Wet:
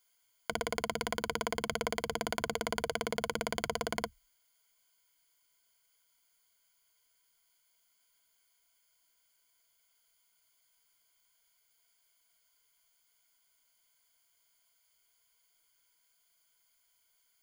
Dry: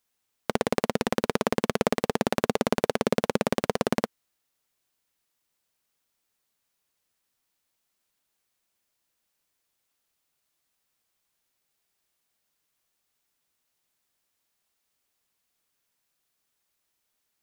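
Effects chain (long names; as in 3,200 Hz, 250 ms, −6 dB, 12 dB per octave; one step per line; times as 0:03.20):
EQ curve with evenly spaced ripples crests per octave 1.8, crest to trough 14 dB
in parallel at +0.5 dB: compressor whose output falls as the input rises −31 dBFS, ratio −1
on the sum: parametric band 200 Hz −13 dB 2.9 octaves
level −8 dB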